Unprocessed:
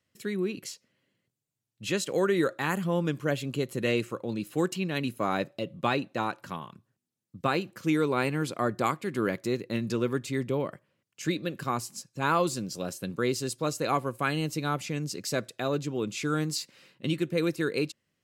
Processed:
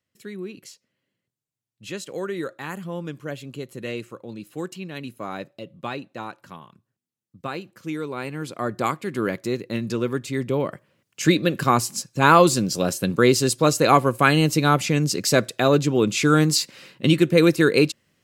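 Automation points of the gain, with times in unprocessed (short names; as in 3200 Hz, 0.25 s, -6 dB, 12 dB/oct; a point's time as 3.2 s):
8.2 s -4 dB
8.85 s +3.5 dB
10.3 s +3.5 dB
11.23 s +11.5 dB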